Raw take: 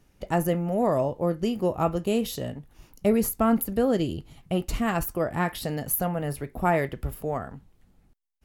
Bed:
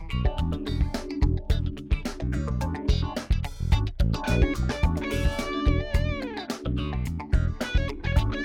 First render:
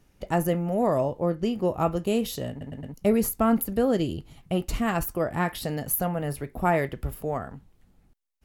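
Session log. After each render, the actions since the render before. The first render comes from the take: 1.2–1.68 high shelf 7800 Hz -9 dB; 2.5 stutter in place 0.11 s, 4 plays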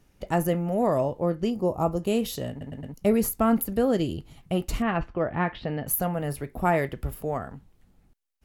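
1.5–2.03 band shelf 2300 Hz -11 dB; 4.82–5.87 LPF 3200 Hz 24 dB/oct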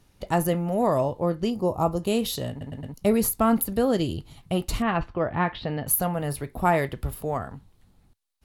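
fifteen-band EQ 100 Hz +5 dB, 1000 Hz +4 dB, 4000 Hz +7 dB, 10000 Hz +5 dB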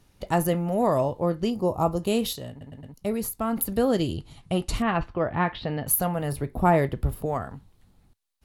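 2.33–3.57 gain -6.5 dB; 4.11–4.77 steep low-pass 11000 Hz 48 dB/oct; 6.32–7.26 tilt shelf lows +4.5 dB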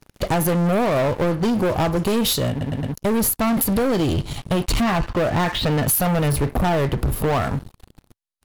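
compressor 6:1, threshold -27 dBFS, peak gain reduction 12.5 dB; sample leveller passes 5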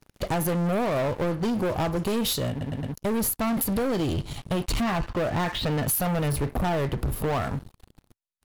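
gain -6 dB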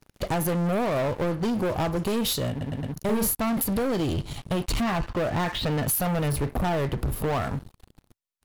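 2.92–3.35 doubler 41 ms -4.5 dB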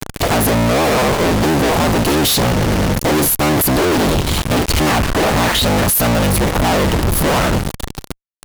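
cycle switcher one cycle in 3, inverted; fuzz box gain 55 dB, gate -53 dBFS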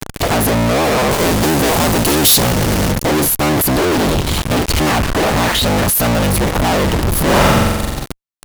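1.11–2.92 high shelf 5700 Hz +9 dB; 7.23–8.06 flutter echo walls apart 7.7 m, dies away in 1.3 s

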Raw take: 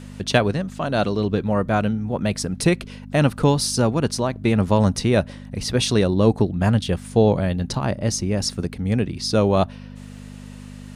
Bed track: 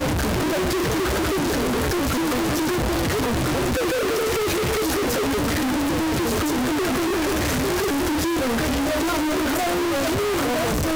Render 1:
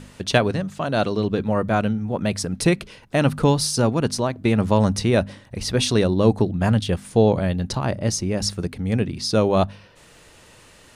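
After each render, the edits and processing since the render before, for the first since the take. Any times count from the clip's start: de-hum 50 Hz, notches 5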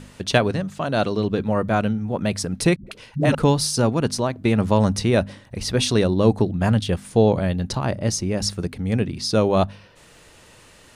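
2.76–3.35 dispersion highs, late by 0.106 s, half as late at 310 Hz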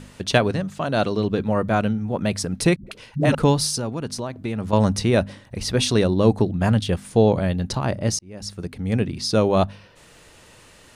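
3.76–4.73 compressor 2:1, threshold -29 dBFS; 8.19–8.95 fade in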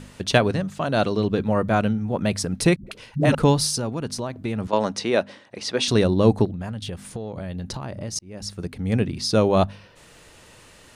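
4.67–5.88 BPF 320–6500 Hz; 6.45–8.16 compressor 16:1, threshold -27 dBFS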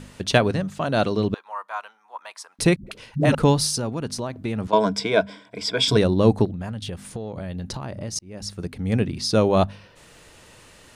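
1.34–2.59 ladder high-pass 890 Hz, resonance 65%; 4.72–5.97 ripple EQ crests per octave 1.7, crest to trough 14 dB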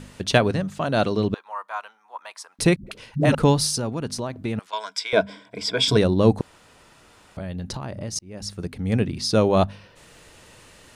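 4.59–5.13 HPF 1500 Hz; 6.41–7.37 room tone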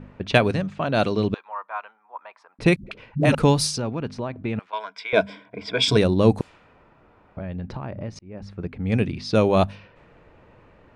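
low-pass opened by the level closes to 1100 Hz, open at -15 dBFS; bell 2400 Hz +6 dB 0.23 oct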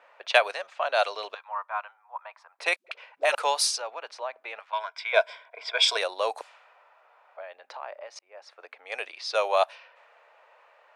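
steep high-pass 590 Hz 36 dB/oct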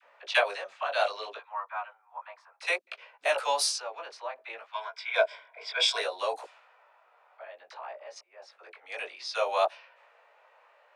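dispersion lows, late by 42 ms, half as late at 770 Hz; chorus 0.62 Hz, delay 16 ms, depth 4.9 ms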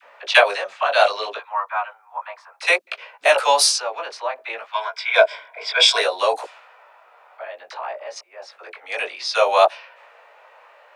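gain +11.5 dB; limiter -1 dBFS, peak gain reduction 1.5 dB

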